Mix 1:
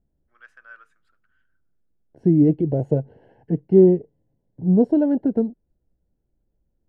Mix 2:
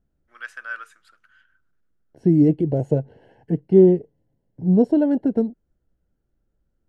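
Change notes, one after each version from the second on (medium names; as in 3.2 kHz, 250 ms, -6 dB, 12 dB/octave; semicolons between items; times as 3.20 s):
first voice +9.5 dB; master: add treble shelf 2.4 kHz +11.5 dB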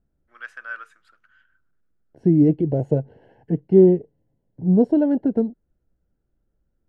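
master: add treble shelf 3.7 kHz -9.5 dB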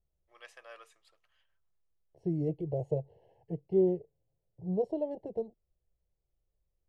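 second voice -8.5 dB; master: add static phaser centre 610 Hz, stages 4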